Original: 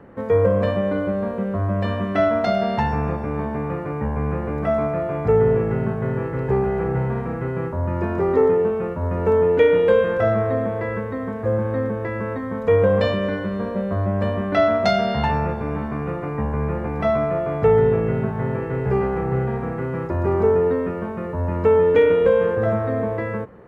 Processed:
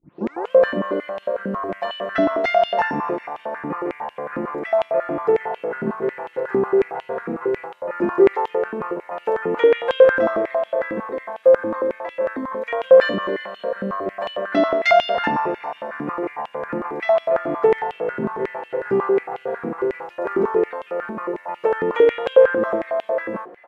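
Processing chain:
turntable start at the beginning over 0.51 s
comb filter 5.7 ms, depth 50%
echo with shifted repeats 390 ms, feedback 36%, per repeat +42 Hz, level −23 dB
high-pass on a step sequencer 11 Hz 270–3,000 Hz
level −3 dB

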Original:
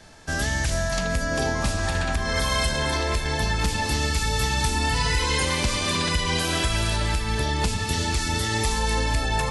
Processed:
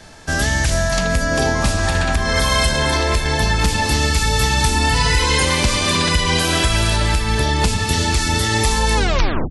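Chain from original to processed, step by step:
turntable brake at the end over 0.55 s
level +7 dB

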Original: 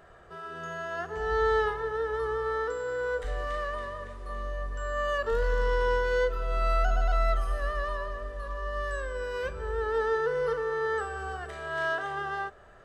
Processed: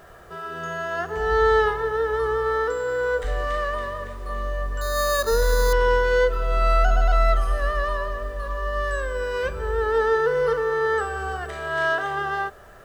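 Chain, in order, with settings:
bit reduction 11 bits
0:04.81–0:05.73: bad sample-rate conversion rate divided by 8×, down filtered, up hold
level +7 dB

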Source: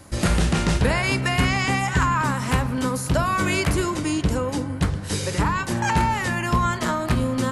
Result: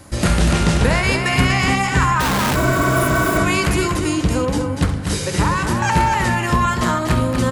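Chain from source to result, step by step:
loudspeakers that aren't time-aligned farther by 23 metres −11 dB, 83 metres −6 dB
0:02.20–0:03.38: comparator with hysteresis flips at −30.5 dBFS
0:02.58–0:03.39: healed spectral selection 240–8,900 Hz after
level +3.5 dB

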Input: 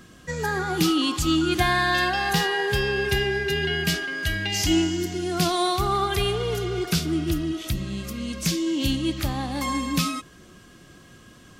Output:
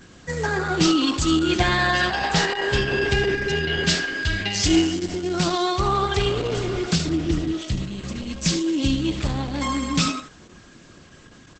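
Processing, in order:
0:03.84–0:05.06: dynamic equaliser 4,200 Hz, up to +4 dB, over −44 dBFS, Q 2.7
on a send: single-tap delay 74 ms −12 dB
on the sum: level +2.5 dB
Opus 10 kbit/s 48,000 Hz

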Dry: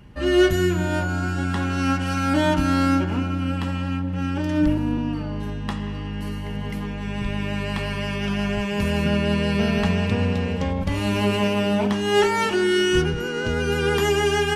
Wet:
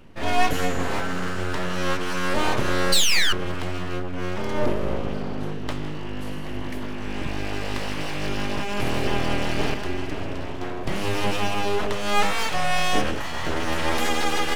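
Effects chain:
on a send: echo with a time of its own for lows and highs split 340 Hz, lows 374 ms, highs 160 ms, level −14 dB
0:02.92–0:03.33: on the sum: sound drawn into the spectrogram fall 1,400–4,500 Hz −16 dBFS
0:09.74–0:10.84: tuned comb filter 180 Hz, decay 0.22 s, harmonics all, mix 60%
full-wave rectification

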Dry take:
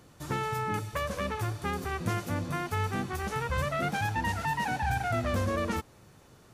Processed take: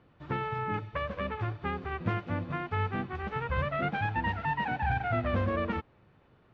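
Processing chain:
low-pass filter 3,100 Hz 24 dB per octave
expander for the loud parts 1.5 to 1, over −40 dBFS
level +1 dB

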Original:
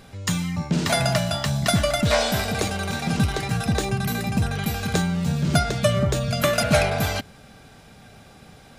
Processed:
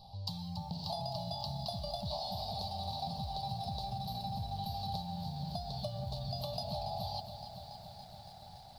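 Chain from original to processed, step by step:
drawn EQ curve 180 Hz 0 dB, 460 Hz −13 dB, 830 Hz +9 dB, 1,400 Hz −24 dB, 2,100 Hz −23 dB, 4,500 Hz +12 dB, 6,800 Hz −22 dB, 13,000 Hz −8 dB
downward compressor 16 to 1, threshold −28 dBFS, peak gain reduction 15.5 dB
phaser with its sweep stopped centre 740 Hz, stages 4
feedback echo at a low word length 282 ms, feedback 80%, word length 9 bits, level −10.5 dB
level −6 dB

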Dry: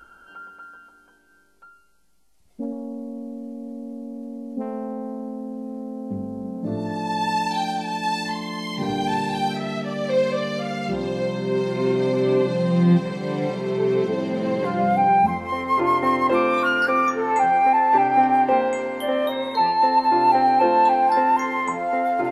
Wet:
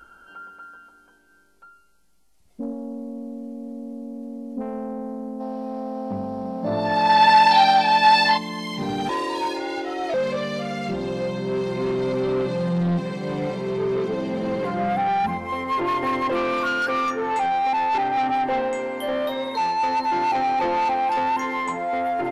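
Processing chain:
0:09.09–0:10.14: frequency shifter +140 Hz
soft clipping −18.5 dBFS, distortion −12 dB
0:05.41–0:08.38: gain on a spectral selection 530–5,800 Hz +12 dB

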